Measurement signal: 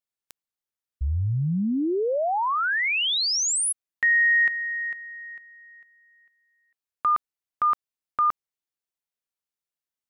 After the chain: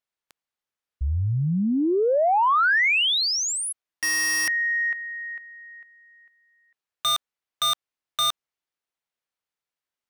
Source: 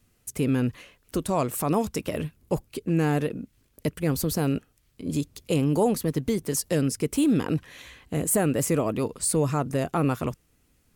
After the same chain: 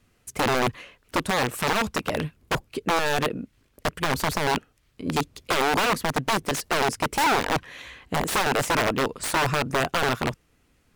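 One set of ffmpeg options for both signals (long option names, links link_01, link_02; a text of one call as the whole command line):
ffmpeg -i in.wav -filter_complex "[0:a]aeval=exprs='(mod(9.44*val(0)+1,2)-1)/9.44':channel_layout=same,asplit=2[link_01][link_02];[link_02]highpass=frequency=720:poles=1,volume=2dB,asoftclip=type=tanh:threshold=-19dB[link_03];[link_01][link_03]amix=inputs=2:normalize=0,lowpass=frequency=2600:poles=1,volume=-6dB,volume=6.5dB" out.wav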